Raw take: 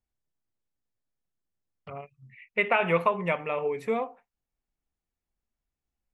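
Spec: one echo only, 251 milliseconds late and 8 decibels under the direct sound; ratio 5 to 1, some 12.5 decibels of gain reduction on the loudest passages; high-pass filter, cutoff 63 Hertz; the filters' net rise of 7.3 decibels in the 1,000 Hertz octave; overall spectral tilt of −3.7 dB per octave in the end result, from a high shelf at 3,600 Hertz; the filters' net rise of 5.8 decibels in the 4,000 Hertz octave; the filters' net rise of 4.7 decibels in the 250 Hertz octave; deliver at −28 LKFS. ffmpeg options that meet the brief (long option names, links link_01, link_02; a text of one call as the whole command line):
ffmpeg -i in.wav -af "highpass=63,equalizer=frequency=250:width_type=o:gain=6.5,equalizer=frequency=1000:width_type=o:gain=7.5,highshelf=frequency=3600:gain=7,equalizer=frequency=4000:width_type=o:gain=4,acompressor=threshold=-26dB:ratio=5,aecho=1:1:251:0.398,volume=3dB" out.wav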